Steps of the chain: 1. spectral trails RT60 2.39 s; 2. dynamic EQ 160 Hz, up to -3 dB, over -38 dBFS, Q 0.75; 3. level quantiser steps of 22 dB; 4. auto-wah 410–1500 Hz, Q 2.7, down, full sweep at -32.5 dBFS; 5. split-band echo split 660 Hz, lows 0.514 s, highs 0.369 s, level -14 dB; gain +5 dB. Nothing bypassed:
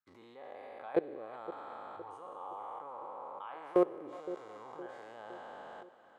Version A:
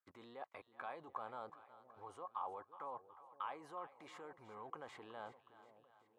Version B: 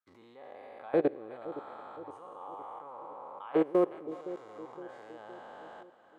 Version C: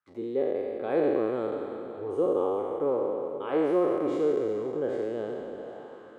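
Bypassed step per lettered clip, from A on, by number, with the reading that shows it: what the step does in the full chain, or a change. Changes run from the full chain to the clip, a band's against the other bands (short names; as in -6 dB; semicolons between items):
1, 250 Hz band -13.0 dB; 2, loudness change +5.0 LU; 3, crest factor change -9.5 dB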